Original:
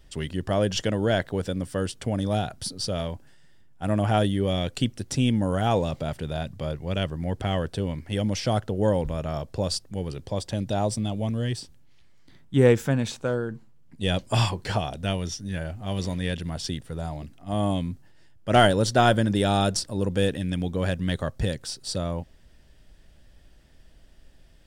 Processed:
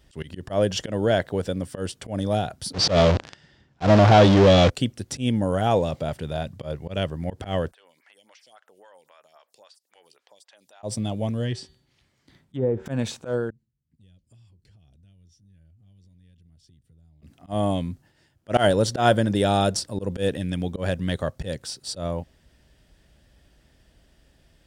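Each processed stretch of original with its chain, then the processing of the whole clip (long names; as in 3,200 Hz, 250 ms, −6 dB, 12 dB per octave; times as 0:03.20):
0:02.73–0:04.70: converter with a step at zero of −24.5 dBFS + leveller curve on the samples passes 2 + low-pass filter 5,900 Hz 24 dB per octave
0:07.71–0:10.83: high-pass filter 1,200 Hz + downward compressor 3 to 1, threshold −51 dBFS + phaser with staggered stages 3.7 Hz
0:11.44–0:12.86: treble cut that deepens with the level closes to 740 Hz, closed at −14.5 dBFS + hum removal 190.4 Hz, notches 24 + downward compressor 10 to 1, threshold −20 dBFS
0:13.50–0:17.22: guitar amp tone stack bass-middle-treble 10-0-1 + downward compressor, threshold −53 dBFS
whole clip: high-pass filter 47 Hz; dynamic equaliser 560 Hz, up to +4 dB, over −35 dBFS, Q 1.3; volume swells 105 ms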